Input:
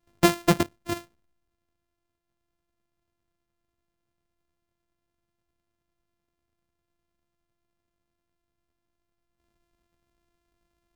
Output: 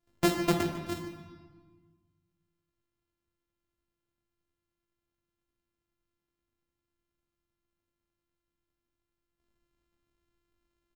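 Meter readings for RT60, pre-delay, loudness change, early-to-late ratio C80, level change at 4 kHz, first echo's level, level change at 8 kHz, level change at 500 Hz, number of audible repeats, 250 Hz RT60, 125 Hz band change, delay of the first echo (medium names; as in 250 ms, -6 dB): 1.5 s, 17 ms, -5.0 dB, 6.5 dB, -5.5 dB, -15.0 dB, -6.5 dB, -5.0 dB, 1, 1.9 s, -5.5 dB, 148 ms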